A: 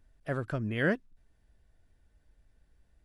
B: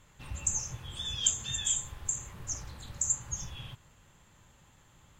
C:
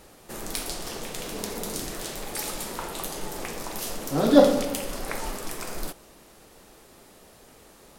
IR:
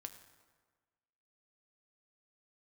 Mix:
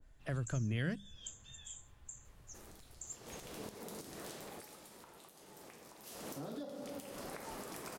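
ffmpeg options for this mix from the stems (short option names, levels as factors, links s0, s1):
-filter_complex "[0:a]bandreject=f=50:t=h:w=6,bandreject=f=100:t=h:w=6,bandreject=f=150:t=h:w=6,bandreject=f=200:t=h:w=6,volume=1.19,asplit=2[s0][s1];[s1]volume=0.0944[s2];[1:a]volume=0.126[s3];[2:a]highpass=85,acompressor=threshold=0.0251:ratio=5,alimiter=level_in=1.12:limit=0.0631:level=0:latency=1:release=338,volume=0.891,adelay=2250,volume=2.11,afade=t=in:st=3.2:d=0.25:silence=0.223872,afade=t=out:st=4.25:d=0.62:silence=0.251189,afade=t=in:st=5.98:d=0.33:silence=0.237137[s4];[3:a]atrim=start_sample=2205[s5];[s2][s5]afir=irnorm=-1:irlink=0[s6];[s0][s3][s4][s6]amix=inputs=4:normalize=0,acrossover=split=160|3000[s7][s8][s9];[s8]acompressor=threshold=0.00794:ratio=6[s10];[s7][s10][s9]amix=inputs=3:normalize=0,adynamicequalizer=threshold=0.00112:dfrequency=1900:dqfactor=0.7:tfrequency=1900:tqfactor=0.7:attack=5:release=100:ratio=0.375:range=2:mode=cutabove:tftype=highshelf"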